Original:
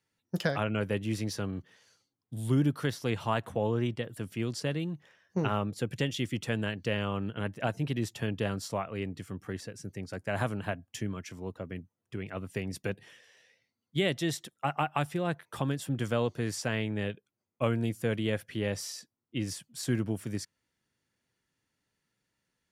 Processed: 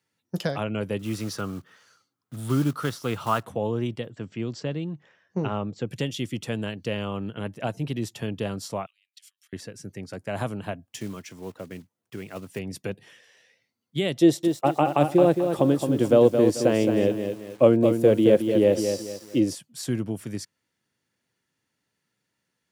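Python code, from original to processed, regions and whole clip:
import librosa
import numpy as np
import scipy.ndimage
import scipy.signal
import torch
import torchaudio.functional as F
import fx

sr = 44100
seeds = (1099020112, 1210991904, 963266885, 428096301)

y = fx.chain(x, sr, fx.block_float(bits=5),
    fx.peak_eq(hz=1300.0, db=13.0, octaves=0.46), at=(0.99, 3.45))
y = fx.chain(y, sr, fx.brickwall_lowpass(high_hz=8200.0),
    fx.high_shelf(hz=4300.0, db=-9.5), at=(4.09, 5.88))
y = fx.chain(y, sr, fx.over_compress(threshold_db=-45.0, ratio=-1.0),
    fx.ladder_highpass(hz=2700.0, resonance_pct=30), at=(8.86, 9.53))
y = fx.chain(y, sr, fx.block_float(bits=5),
    fx.low_shelf(hz=110.0, db=-7.0), at=(10.87, 12.59))
y = fx.chain(y, sr, fx.small_body(hz=(340.0, 520.0), ring_ms=20, db=13),
    fx.echo_crushed(ms=219, feedback_pct=35, bits=8, wet_db=-6.5), at=(14.21, 19.55))
y = scipy.signal.sosfilt(scipy.signal.butter(2, 99.0, 'highpass', fs=sr, output='sos'), y)
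y = fx.dynamic_eq(y, sr, hz=1700.0, q=1.4, threshold_db=-50.0, ratio=4.0, max_db=-6)
y = y * librosa.db_to_amplitude(3.0)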